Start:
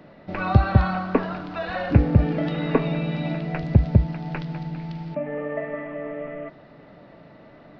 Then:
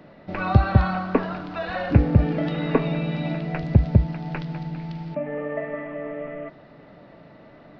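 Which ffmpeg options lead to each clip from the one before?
-af anull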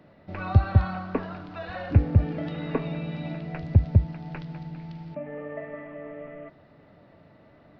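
-af "equalizer=f=89:w=2.3:g=10,volume=-7.5dB"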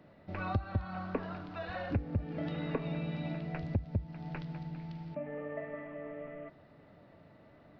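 -af "acompressor=threshold=-25dB:ratio=6,volume=-4dB"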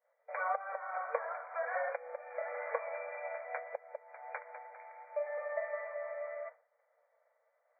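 -af "agate=range=-33dB:threshold=-46dB:ratio=3:detection=peak,afftfilt=real='re*between(b*sr/4096,460,2400)':imag='im*between(b*sr/4096,460,2400)':win_size=4096:overlap=0.75,volume=5dB"

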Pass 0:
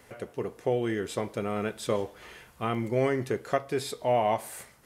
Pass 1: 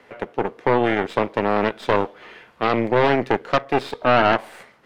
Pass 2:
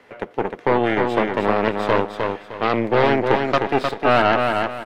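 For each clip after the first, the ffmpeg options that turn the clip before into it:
-filter_complex "[0:a]aeval=exprs='0.299*(cos(1*acos(clip(val(0)/0.299,-1,1)))-cos(1*PI/2))+0.0944*(cos(8*acos(clip(val(0)/0.299,-1,1)))-cos(8*PI/2))':c=same,acrossover=split=180 4100:gain=0.2 1 0.0891[a][b][c];[a][b][c]amix=inputs=3:normalize=0,volume=6dB"
-af "aecho=1:1:307|614|921|1228:0.596|0.173|0.0501|0.0145"

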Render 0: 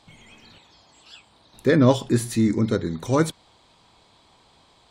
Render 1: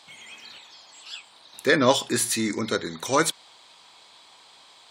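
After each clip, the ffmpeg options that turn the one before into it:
-af "highpass=f=1.5k:p=1,volume=8.5dB"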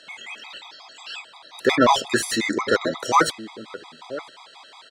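-filter_complex "[0:a]asplit=2[a][b];[b]adelay=991.3,volume=-16dB,highshelf=f=4k:g=-22.3[c];[a][c]amix=inputs=2:normalize=0,asplit=2[d][e];[e]highpass=f=720:p=1,volume=16dB,asoftclip=type=tanh:threshold=-5dB[f];[d][f]amix=inputs=2:normalize=0,lowpass=f=1.8k:p=1,volume=-6dB,afftfilt=real='re*gt(sin(2*PI*5.6*pts/sr)*(1-2*mod(floor(b*sr/1024/650),2)),0)':imag='im*gt(sin(2*PI*5.6*pts/sr)*(1-2*mod(floor(b*sr/1024/650),2)),0)':win_size=1024:overlap=0.75,volume=3.5dB"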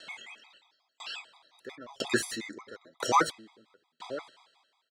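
-af "aeval=exprs='val(0)*pow(10,-37*if(lt(mod(1*n/s,1),2*abs(1)/1000),1-mod(1*n/s,1)/(2*abs(1)/1000),(mod(1*n/s,1)-2*abs(1)/1000)/(1-2*abs(1)/1000))/20)':c=same"

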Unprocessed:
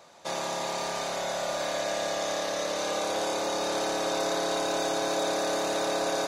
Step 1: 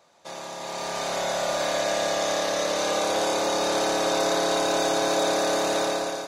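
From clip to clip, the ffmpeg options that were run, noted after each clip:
-af "dynaudnorm=f=580:g=3:m=11.5dB,volume=-6.5dB"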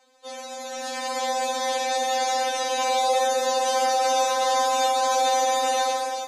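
-af "afftfilt=real='re*3.46*eq(mod(b,12),0)':imag='im*3.46*eq(mod(b,12),0)':win_size=2048:overlap=0.75,volume=3dB"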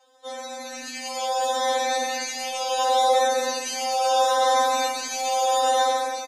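-filter_complex "[0:a]asplit=2[a][b];[b]adelay=3.2,afreqshift=-0.72[c];[a][c]amix=inputs=2:normalize=1,volume=3dB"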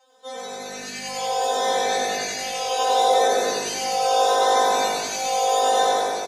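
-filter_complex "[0:a]asplit=7[a][b][c][d][e][f][g];[b]adelay=95,afreqshift=-51,volume=-4.5dB[h];[c]adelay=190,afreqshift=-102,volume=-10.7dB[i];[d]adelay=285,afreqshift=-153,volume=-16.9dB[j];[e]adelay=380,afreqshift=-204,volume=-23.1dB[k];[f]adelay=475,afreqshift=-255,volume=-29.3dB[l];[g]adelay=570,afreqshift=-306,volume=-35.5dB[m];[a][h][i][j][k][l][m]amix=inputs=7:normalize=0"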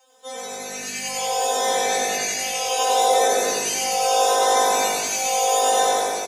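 -af "aexciter=amount=1.5:drive=5:freq=2.2k"

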